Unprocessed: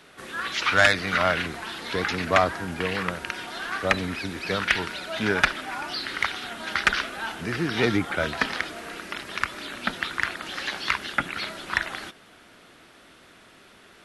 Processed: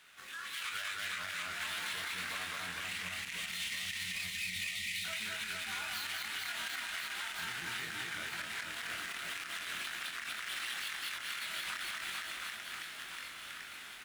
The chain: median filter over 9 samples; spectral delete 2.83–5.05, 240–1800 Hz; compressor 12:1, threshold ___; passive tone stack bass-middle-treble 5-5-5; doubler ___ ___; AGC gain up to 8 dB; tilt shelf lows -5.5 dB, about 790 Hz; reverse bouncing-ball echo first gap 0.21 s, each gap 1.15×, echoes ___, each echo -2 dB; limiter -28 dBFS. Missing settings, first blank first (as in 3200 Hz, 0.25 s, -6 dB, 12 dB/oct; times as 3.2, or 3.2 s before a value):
-38 dBFS, 23 ms, -6 dB, 7